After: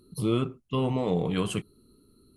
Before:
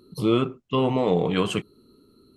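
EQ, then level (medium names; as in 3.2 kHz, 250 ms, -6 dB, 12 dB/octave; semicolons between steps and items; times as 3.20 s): tone controls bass +4 dB, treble +3 dB; bass shelf 72 Hz +10 dB; peaking EQ 10 kHz +12.5 dB 0.33 oct; -7.0 dB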